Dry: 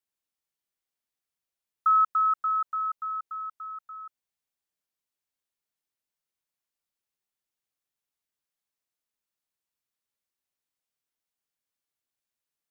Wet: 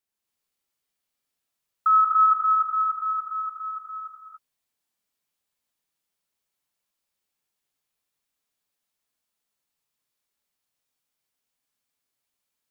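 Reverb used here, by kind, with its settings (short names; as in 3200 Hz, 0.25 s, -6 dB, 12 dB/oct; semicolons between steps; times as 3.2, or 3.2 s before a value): non-linear reverb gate 0.31 s rising, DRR -3.5 dB; gain +1.5 dB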